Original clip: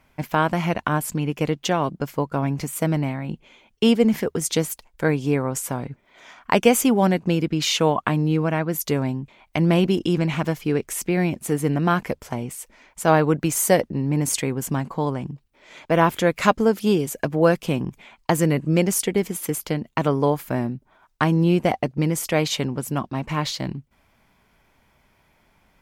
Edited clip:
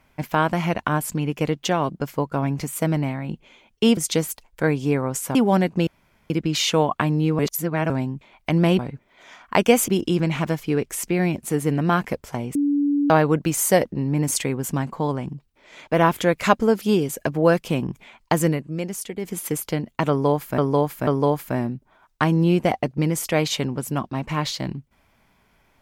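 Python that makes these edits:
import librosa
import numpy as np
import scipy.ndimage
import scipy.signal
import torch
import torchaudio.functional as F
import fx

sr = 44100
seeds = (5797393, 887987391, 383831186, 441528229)

y = fx.edit(x, sr, fx.cut(start_s=3.97, length_s=0.41),
    fx.move(start_s=5.76, length_s=1.09, to_s=9.86),
    fx.insert_room_tone(at_s=7.37, length_s=0.43),
    fx.reverse_span(start_s=8.46, length_s=0.51),
    fx.bleep(start_s=12.53, length_s=0.55, hz=287.0, db=-17.0),
    fx.fade_down_up(start_s=18.45, length_s=0.89, db=-9.0, fade_s=0.15),
    fx.repeat(start_s=20.07, length_s=0.49, count=3), tone=tone)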